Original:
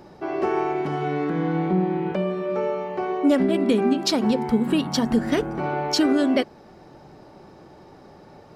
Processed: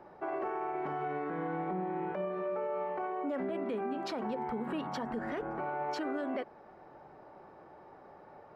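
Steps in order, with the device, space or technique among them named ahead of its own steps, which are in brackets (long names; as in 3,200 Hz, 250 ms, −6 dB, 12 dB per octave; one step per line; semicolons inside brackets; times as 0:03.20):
DJ mixer with the lows and highs turned down (three-way crossover with the lows and the highs turned down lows −12 dB, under 470 Hz, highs −21 dB, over 2,100 Hz; brickwall limiter −25.5 dBFS, peak gain reduction 11.5 dB)
level −2.5 dB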